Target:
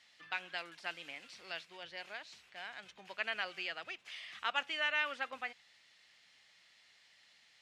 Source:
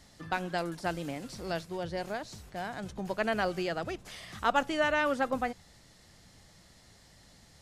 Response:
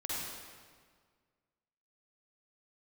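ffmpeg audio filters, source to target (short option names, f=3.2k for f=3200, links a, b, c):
-af "bandpass=f=2.6k:t=q:w=2.1:csg=0,volume=3dB"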